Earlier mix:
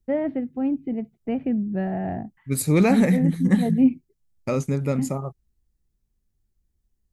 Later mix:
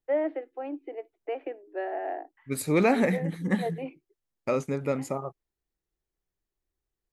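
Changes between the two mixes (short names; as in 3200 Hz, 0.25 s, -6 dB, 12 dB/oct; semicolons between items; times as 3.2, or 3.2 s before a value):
first voice: add steep high-pass 300 Hz 96 dB/oct; master: add tone controls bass -12 dB, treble -8 dB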